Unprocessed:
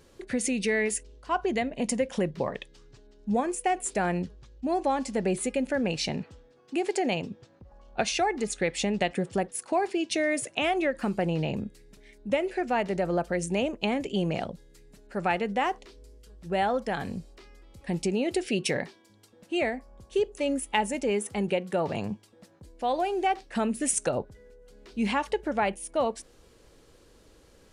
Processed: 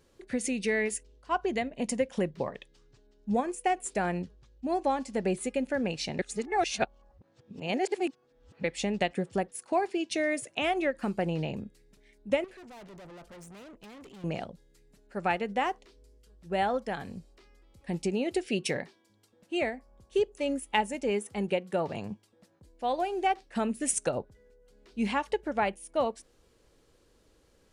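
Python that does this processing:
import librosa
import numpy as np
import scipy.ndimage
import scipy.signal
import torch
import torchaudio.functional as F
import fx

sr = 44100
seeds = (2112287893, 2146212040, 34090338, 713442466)

y = fx.tube_stage(x, sr, drive_db=39.0, bias=0.45, at=(12.44, 14.24))
y = fx.edit(y, sr, fx.reverse_span(start_s=6.19, length_s=2.45), tone=tone)
y = fx.upward_expand(y, sr, threshold_db=-36.0, expansion=1.5)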